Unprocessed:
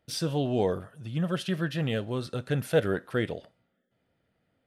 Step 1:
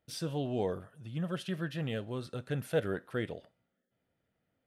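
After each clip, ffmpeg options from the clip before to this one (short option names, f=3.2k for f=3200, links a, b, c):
-af "equalizer=f=4.9k:w=1.5:g=-2,volume=-6.5dB"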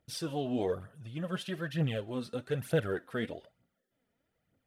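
-af "aphaser=in_gain=1:out_gain=1:delay=4.9:decay=0.57:speed=1.1:type=triangular"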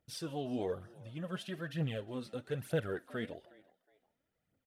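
-filter_complex "[0:a]asplit=3[a][b][c];[b]adelay=364,afreqshift=100,volume=-23.5dB[d];[c]adelay=728,afreqshift=200,volume=-33.7dB[e];[a][d][e]amix=inputs=3:normalize=0,volume=-4.5dB"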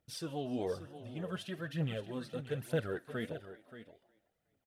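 -af "aecho=1:1:578:0.237"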